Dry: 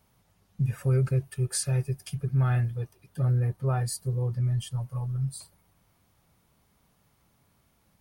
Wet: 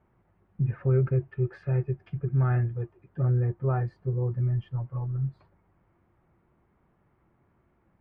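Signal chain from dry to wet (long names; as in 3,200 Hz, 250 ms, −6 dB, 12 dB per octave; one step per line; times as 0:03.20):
low-pass filter 2,000 Hz 24 dB per octave
parametric band 350 Hz +11.5 dB 0.24 octaves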